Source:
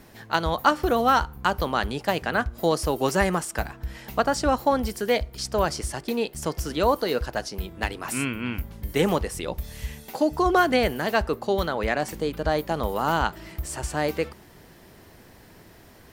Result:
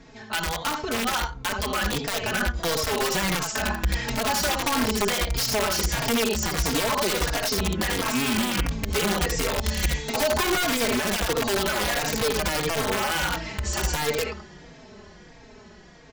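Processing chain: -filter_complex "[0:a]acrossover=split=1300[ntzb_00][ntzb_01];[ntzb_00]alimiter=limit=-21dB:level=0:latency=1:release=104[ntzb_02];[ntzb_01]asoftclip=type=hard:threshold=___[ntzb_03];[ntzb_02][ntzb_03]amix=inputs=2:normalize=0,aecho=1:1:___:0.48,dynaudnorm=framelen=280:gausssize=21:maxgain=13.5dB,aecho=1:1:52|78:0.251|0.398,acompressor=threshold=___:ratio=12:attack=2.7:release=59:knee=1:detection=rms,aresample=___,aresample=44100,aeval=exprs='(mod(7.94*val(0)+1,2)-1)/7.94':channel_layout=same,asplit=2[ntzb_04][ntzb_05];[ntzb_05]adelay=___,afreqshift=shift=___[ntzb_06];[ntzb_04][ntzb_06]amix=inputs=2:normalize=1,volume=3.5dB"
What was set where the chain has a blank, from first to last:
-26dB, 4.7, -20dB, 16000, 3.8, -1.5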